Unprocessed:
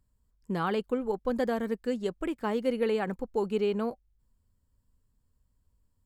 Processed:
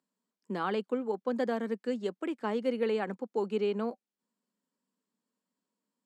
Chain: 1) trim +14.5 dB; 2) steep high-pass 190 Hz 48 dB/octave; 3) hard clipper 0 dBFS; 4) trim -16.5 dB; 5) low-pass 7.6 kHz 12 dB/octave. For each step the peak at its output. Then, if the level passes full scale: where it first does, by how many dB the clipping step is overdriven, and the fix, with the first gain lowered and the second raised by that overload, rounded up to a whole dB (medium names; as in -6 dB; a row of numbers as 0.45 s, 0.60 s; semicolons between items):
-1.5 dBFS, -2.5 dBFS, -2.5 dBFS, -19.0 dBFS, -19.0 dBFS; nothing clips